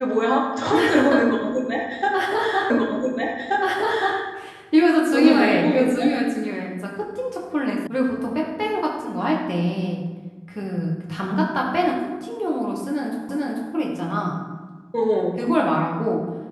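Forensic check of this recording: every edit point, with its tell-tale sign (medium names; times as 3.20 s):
2.70 s: repeat of the last 1.48 s
7.87 s: sound stops dead
13.29 s: repeat of the last 0.44 s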